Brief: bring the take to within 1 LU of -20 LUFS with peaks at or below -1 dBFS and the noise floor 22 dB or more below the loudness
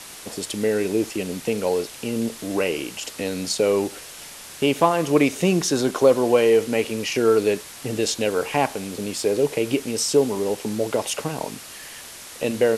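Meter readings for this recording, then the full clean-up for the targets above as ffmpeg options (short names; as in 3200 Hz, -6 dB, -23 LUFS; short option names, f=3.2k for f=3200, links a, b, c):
noise floor -40 dBFS; noise floor target -45 dBFS; loudness -22.5 LUFS; peak -4.0 dBFS; loudness target -20.0 LUFS
-> -af "afftdn=nr=6:nf=-40"
-af "volume=2.5dB"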